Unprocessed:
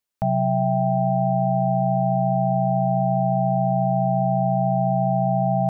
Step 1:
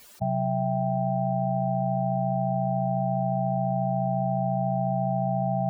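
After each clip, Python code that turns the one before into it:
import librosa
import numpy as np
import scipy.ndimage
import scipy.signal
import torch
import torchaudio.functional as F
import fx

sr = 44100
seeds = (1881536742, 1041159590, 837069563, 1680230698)

y = fx.spec_expand(x, sr, power=2.4)
y = fx.env_flatten(y, sr, amount_pct=100)
y = F.gain(torch.from_numpy(y), -6.0).numpy()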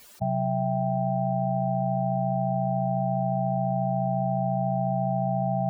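y = x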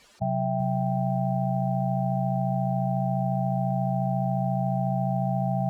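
y = fx.air_absorb(x, sr, metres=76.0)
y = fx.echo_feedback(y, sr, ms=256, feedback_pct=35, wet_db=-23)
y = fx.echo_crushed(y, sr, ms=383, feedback_pct=35, bits=9, wet_db=-10)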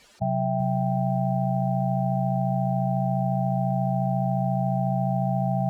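y = fx.notch(x, sr, hz=1100.0, q=9.1)
y = F.gain(torch.from_numpy(y), 1.5).numpy()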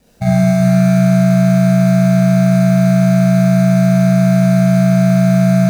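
y = scipy.signal.medfilt(x, 41)
y = fx.bass_treble(y, sr, bass_db=3, treble_db=13)
y = fx.rev_schroeder(y, sr, rt60_s=1.2, comb_ms=32, drr_db=-6.0)
y = F.gain(torch.from_numpy(y), 6.5).numpy()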